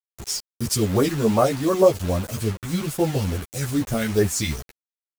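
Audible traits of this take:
phaser sweep stages 2, 2.4 Hz, lowest notch 580–4,800 Hz
a quantiser's noise floor 6 bits, dither none
a shimmering, thickened sound

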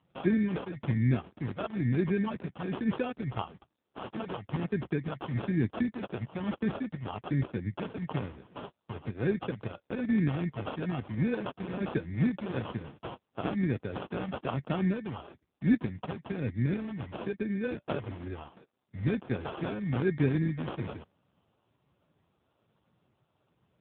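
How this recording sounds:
phaser sweep stages 2, 1.1 Hz, lowest notch 300–1,700 Hz
aliases and images of a low sample rate 2,000 Hz, jitter 0%
AMR narrowband

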